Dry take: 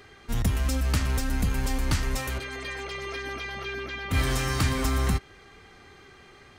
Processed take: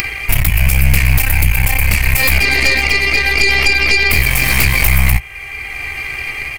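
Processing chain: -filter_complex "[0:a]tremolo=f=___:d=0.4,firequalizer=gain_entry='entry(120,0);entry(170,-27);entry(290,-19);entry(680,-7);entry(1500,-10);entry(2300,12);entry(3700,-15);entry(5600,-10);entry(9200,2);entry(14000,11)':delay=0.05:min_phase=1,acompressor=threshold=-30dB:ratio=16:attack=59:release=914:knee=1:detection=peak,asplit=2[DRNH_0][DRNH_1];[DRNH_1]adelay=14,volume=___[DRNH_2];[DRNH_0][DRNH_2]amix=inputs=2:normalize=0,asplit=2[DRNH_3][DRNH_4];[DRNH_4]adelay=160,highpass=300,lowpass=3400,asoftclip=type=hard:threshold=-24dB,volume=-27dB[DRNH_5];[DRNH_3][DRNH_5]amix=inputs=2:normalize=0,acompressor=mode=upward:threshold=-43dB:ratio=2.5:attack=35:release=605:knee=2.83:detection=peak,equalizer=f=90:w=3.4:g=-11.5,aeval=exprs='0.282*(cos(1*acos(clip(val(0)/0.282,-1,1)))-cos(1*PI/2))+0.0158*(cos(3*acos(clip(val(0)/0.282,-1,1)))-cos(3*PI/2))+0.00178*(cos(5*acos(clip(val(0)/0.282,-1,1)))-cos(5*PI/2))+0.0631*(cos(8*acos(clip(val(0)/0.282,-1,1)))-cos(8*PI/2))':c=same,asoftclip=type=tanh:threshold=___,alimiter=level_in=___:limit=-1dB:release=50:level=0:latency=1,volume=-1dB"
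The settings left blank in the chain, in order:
0.8, -7.5dB, -24.5dB, 27.5dB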